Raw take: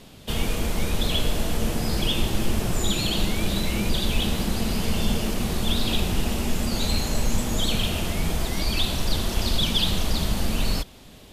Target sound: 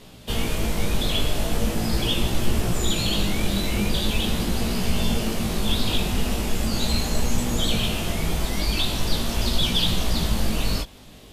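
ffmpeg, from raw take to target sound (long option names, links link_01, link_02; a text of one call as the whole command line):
ffmpeg -i in.wav -af "flanger=delay=16.5:depth=3.5:speed=0.41,volume=4dB" out.wav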